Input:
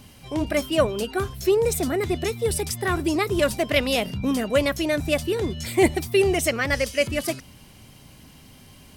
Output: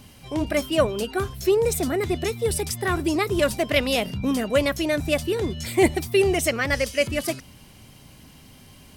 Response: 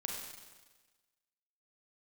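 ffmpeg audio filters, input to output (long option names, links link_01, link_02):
-af anull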